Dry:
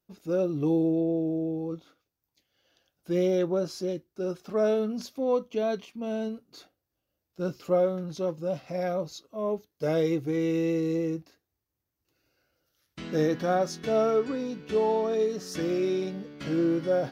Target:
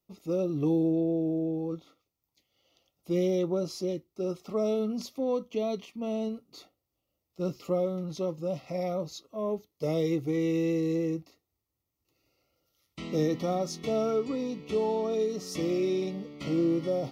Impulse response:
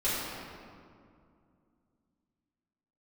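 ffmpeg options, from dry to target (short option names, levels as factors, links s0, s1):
-filter_complex "[0:a]acrossover=split=360|3000[s0][s1][s2];[s1]acompressor=threshold=0.0251:ratio=2.5[s3];[s0][s3][s2]amix=inputs=3:normalize=0,asuperstop=centerf=1600:order=20:qfactor=3.7"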